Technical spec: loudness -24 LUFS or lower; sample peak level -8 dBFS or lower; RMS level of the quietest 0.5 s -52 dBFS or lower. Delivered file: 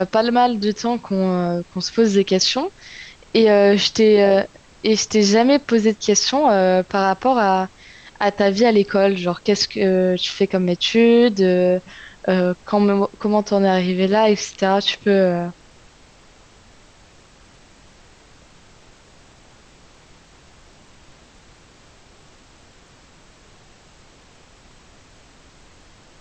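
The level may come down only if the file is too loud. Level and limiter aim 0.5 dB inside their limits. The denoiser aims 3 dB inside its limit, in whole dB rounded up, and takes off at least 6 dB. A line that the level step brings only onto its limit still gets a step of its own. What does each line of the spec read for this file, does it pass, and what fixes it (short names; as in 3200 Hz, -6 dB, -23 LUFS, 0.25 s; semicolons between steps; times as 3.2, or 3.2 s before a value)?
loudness -17.0 LUFS: fail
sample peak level -5.0 dBFS: fail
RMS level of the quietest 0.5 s -49 dBFS: fail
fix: gain -7.5 dB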